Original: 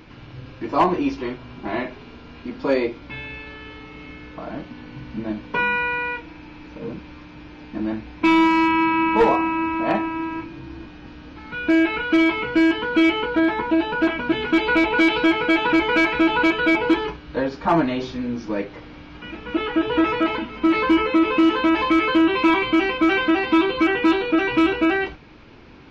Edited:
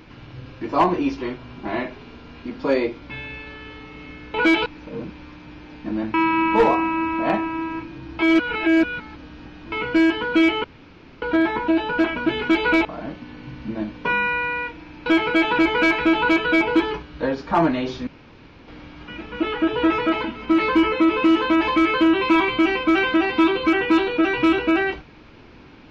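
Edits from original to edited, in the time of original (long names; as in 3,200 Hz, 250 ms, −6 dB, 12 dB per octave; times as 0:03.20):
0:04.34–0:06.55: swap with 0:14.88–0:15.20
0:08.03–0:08.75: remove
0:10.80–0:12.33: reverse
0:13.25: splice in room tone 0.58 s
0:18.21–0:18.82: fill with room tone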